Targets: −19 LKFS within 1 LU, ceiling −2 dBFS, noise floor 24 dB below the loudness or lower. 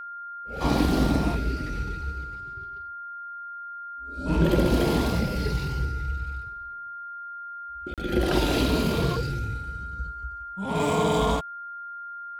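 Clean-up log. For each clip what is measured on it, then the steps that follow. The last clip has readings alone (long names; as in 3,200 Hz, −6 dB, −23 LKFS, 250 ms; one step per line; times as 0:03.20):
number of dropouts 1; longest dropout 37 ms; interfering tone 1,400 Hz; level of the tone −35 dBFS; integrated loudness −28.0 LKFS; sample peak −10.5 dBFS; target loudness −19.0 LKFS
→ repair the gap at 0:07.94, 37 ms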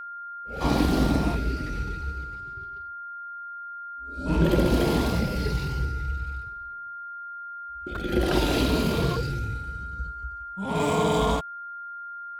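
number of dropouts 0; interfering tone 1,400 Hz; level of the tone −35 dBFS
→ notch filter 1,400 Hz, Q 30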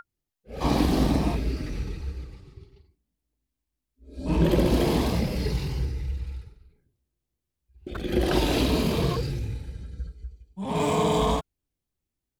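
interfering tone none found; integrated loudness −26.0 LKFS; sample peak −10.5 dBFS; target loudness −19.0 LKFS
→ level +7 dB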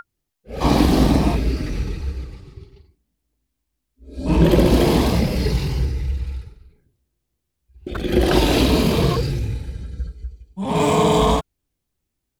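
integrated loudness −19.0 LKFS; sample peak −3.5 dBFS; background noise floor −78 dBFS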